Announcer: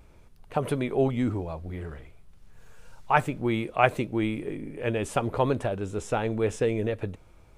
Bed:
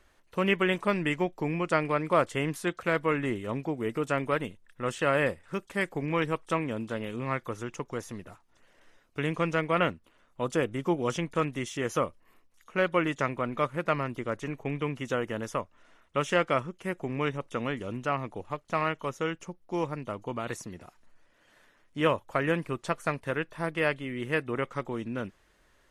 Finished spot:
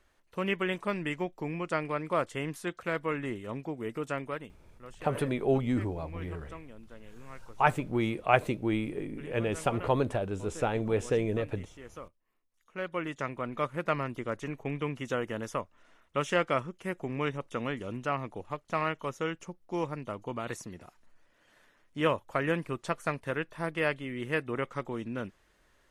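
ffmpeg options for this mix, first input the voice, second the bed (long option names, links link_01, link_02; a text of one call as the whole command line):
ffmpeg -i stem1.wav -i stem2.wav -filter_complex "[0:a]adelay=4500,volume=-2.5dB[link_01];[1:a]volume=10.5dB,afade=type=out:start_time=4.09:duration=0.55:silence=0.237137,afade=type=in:start_time=12.4:duration=1.46:silence=0.16788[link_02];[link_01][link_02]amix=inputs=2:normalize=0" out.wav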